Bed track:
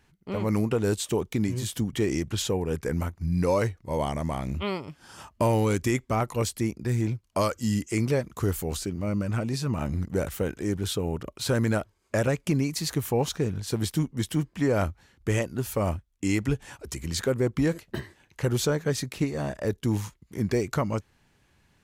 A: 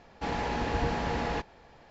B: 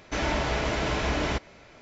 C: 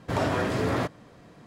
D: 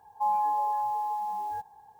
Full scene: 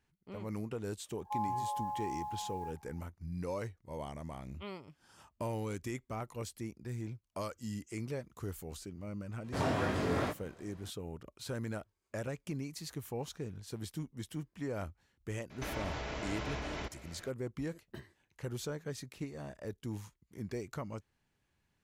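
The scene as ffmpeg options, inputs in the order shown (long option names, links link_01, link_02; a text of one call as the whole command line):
ffmpeg -i bed.wav -i cue0.wav -i cue1.wav -i cue2.wav -i cue3.wav -filter_complex "[0:a]volume=-14.5dB[link_01];[3:a]flanger=delay=19:depth=4:speed=2.1[link_02];[2:a]acompressor=threshold=-32dB:ratio=6:attack=3.2:release=140:knee=1:detection=peak[link_03];[4:a]atrim=end=1.99,asetpts=PTS-STARTPTS,volume=-9.5dB,afade=type=in:duration=0.004:curve=hsin,afade=type=out:start_time=1.986:duration=0.004:curve=hsin,adelay=1100[link_04];[link_02]atrim=end=1.46,asetpts=PTS-STARTPTS,volume=-3.5dB,afade=type=in:duration=0.004:curve=hsin,afade=type=out:start_time=1.456:duration=0.004:curve=hsin,adelay=9440[link_05];[link_03]atrim=end=1.81,asetpts=PTS-STARTPTS,volume=-4dB,afade=type=in:duration=0.004:curve=hsin,afade=type=out:start_time=1.806:duration=0.004:curve=hsin,adelay=15500[link_06];[link_01][link_04][link_05][link_06]amix=inputs=4:normalize=0" out.wav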